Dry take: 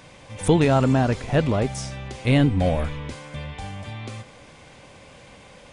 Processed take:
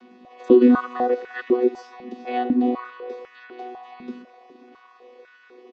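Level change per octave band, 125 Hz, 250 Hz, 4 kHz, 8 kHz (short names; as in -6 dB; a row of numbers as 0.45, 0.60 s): under -25 dB, +3.0 dB, -12.0 dB, under -20 dB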